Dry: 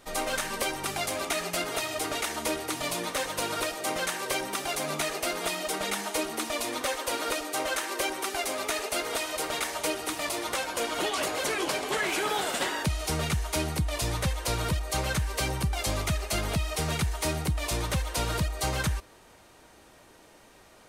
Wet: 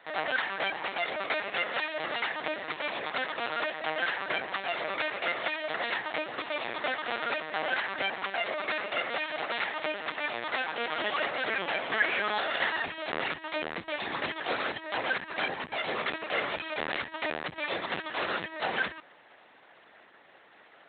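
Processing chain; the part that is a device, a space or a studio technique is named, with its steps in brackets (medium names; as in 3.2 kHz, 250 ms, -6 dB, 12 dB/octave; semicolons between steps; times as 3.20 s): talking toy (LPC vocoder at 8 kHz pitch kept; high-pass 370 Hz 12 dB/octave; peaking EQ 1.8 kHz +7 dB 0.46 oct)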